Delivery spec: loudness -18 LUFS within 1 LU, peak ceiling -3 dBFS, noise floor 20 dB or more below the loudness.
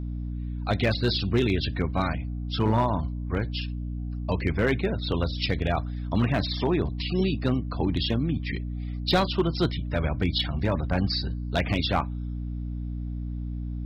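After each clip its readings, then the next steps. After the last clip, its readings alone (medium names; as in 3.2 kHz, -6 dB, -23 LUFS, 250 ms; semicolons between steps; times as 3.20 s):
clipped samples 0.3%; clipping level -14.5 dBFS; hum 60 Hz; highest harmonic 300 Hz; hum level -29 dBFS; loudness -27.5 LUFS; peak level -14.5 dBFS; loudness target -18.0 LUFS
-> clip repair -14.5 dBFS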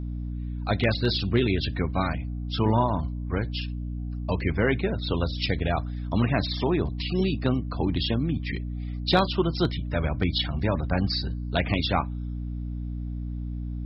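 clipped samples 0.0%; hum 60 Hz; highest harmonic 300 Hz; hum level -29 dBFS
-> hum notches 60/120/180/240/300 Hz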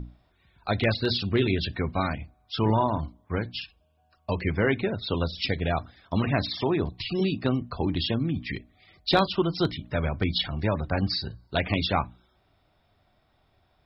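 hum not found; loudness -27.5 LUFS; peak level -7.5 dBFS; loudness target -18.0 LUFS
-> trim +9.5 dB; peak limiter -3 dBFS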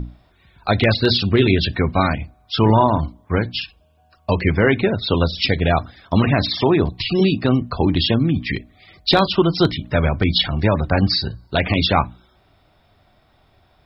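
loudness -18.5 LUFS; peak level -3.0 dBFS; noise floor -58 dBFS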